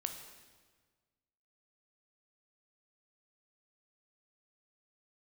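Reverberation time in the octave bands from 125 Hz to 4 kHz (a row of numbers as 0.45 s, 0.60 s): 1.9 s, 1.6 s, 1.5 s, 1.4 s, 1.3 s, 1.3 s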